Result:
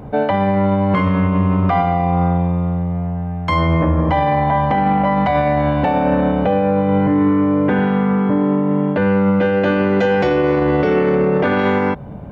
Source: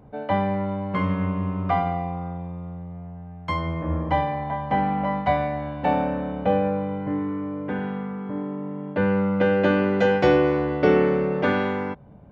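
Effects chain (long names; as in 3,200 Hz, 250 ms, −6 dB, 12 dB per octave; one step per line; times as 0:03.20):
0:11.15–0:11.59: high-shelf EQ 4,500 Hz −8 dB
boost into a limiter +23 dB
level −7 dB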